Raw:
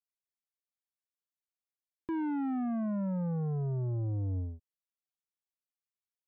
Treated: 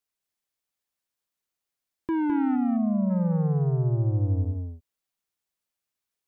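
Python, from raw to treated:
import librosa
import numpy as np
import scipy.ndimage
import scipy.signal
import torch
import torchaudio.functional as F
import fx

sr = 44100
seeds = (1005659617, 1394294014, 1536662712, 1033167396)

y = fx.moving_average(x, sr, points=27, at=(2.55, 3.09), fade=0.02)
y = y + 10.0 ** (-5.0 / 20.0) * np.pad(y, (int(209 * sr / 1000.0), 0))[:len(y)]
y = y * librosa.db_to_amplitude(7.5)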